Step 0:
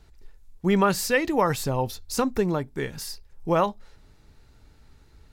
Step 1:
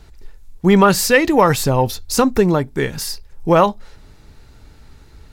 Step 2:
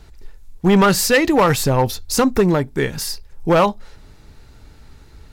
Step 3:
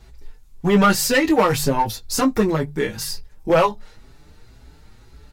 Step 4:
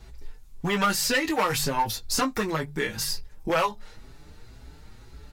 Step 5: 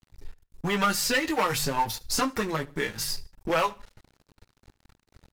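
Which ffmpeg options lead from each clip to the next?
-af "acontrast=83,volume=1.41"
-af "asoftclip=type=hard:threshold=0.376"
-filter_complex "[0:a]asplit=2[s0][s1];[s1]adelay=19,volume=0.422[s2];[s0][s2]amix=inputs=2:normalize=0,bandreject=f=48.29:t=h:w=4,bandreject=f=96.58:t=h:w=4,bandreject=f=144.87:t=h:w=4,asplit=2[s3][s4];[s4]adelay=5.8,afreqshift=2[s5];[s3][s5]amix=inputs=2:normalize=1"
-filter_complex "[0:a]acrossover=split=940|5800[s0][s1][s2];[s0]acompressor=threshold=0.0398:ratio=4[s3];[s1]acompressor=threshold=0.0708:ratio=4[s4];[s2]acompressor=threshold=0.0316:ratio=4[s5];[s3][s4][s5]amix=inputs=3:normalize=0"
-af "aeval=exprs='sgn(val(0))*max(abs(val(0))-0.00891,0)':c=same,aecho=1:1:75|150:0.075|0.024"

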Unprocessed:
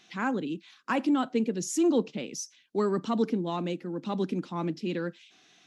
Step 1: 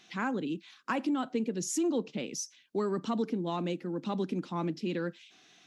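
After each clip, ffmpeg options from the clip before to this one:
-af "acompressor=threshold=0.0355:ratio=2.5"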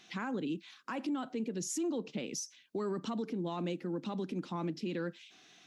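-af "alimiter=level_in=1.68:limit=0.0631:level=0:latency=1:release=97,volume=0.596"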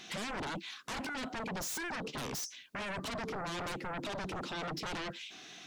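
-af "aeval=exprs='0.0398*sin(PI/2*4.47*val(0)/0.0398)':c=same,volume=0.422"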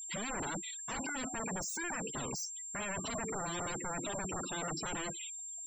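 -af "afftfilt=real='re*gte(hypot(re,im),0.0126)':imag='im*gte(hypot(re,im),0.0126)':win_size=1024:overlap=0.75,aeval=exprs='val(0)+0.00794*sin(2*PI*7400*n/s)':c=same"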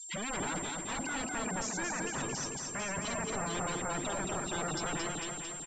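-filter_complex "[0:a]asplit=2[s0][s1];[s1]aecho=0:1:223|446|669|892|1115|1338|1561|1784:0.631|0.366|0.212|0.123|0.0714|0.0414|0.024|0.0139[s2];[s0][s2]amix=inputs=2:normalize=0,volume=1.19" -ar 16000 -c:a g722

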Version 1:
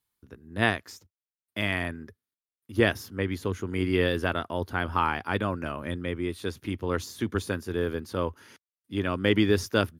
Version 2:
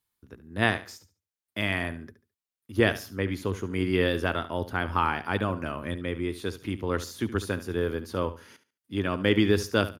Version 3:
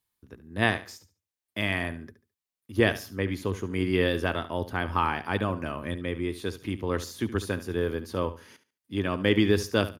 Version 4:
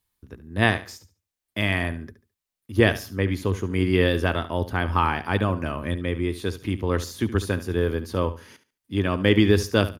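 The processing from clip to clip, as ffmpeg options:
-af "aecho=1:1:71|142|213:0.2|0.0479|0.0115"
-af "bandreject=f=1400:w=13"
-af "lowshelf=f=68:g=11.5,volume=1.5"

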